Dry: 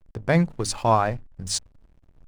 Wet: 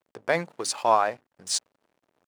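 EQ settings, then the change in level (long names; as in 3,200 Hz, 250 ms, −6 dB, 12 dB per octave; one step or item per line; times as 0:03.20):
high-pass filter 450 Hz 12 dB per octave
0.0 dB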